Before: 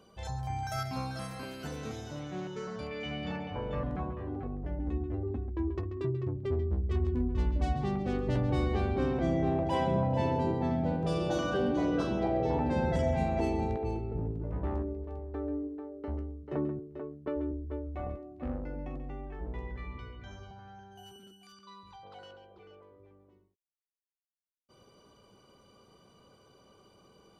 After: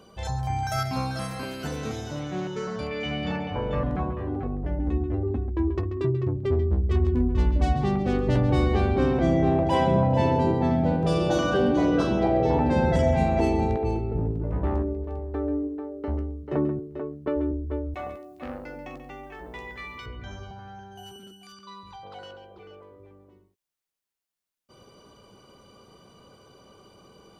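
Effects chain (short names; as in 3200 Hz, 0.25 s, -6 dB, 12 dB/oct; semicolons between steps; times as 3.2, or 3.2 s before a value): 17.94–20.06 tilt +4 dB/oct; gain +7.5 dB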